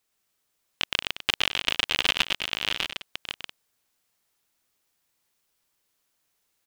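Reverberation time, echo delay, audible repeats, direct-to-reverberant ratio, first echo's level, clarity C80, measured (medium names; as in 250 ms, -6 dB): no reverb, 116 ms, 6, no reverb, -3.0 dB, no reverb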